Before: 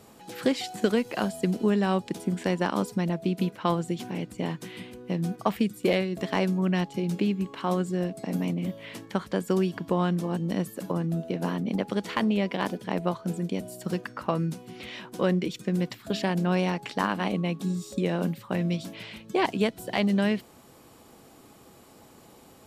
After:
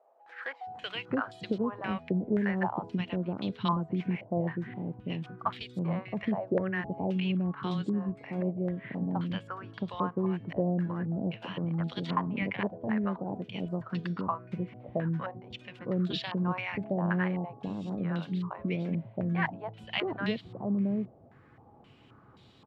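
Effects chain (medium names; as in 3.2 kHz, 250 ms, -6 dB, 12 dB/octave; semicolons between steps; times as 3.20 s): peaking EQ 110 Hz +12 dB 1.1 oct; bands offset in time highs, lows 670 ms, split 650 Hz; step-sequenced low-pass 3.8 Hz 640–3700 Hz; trim -8 dB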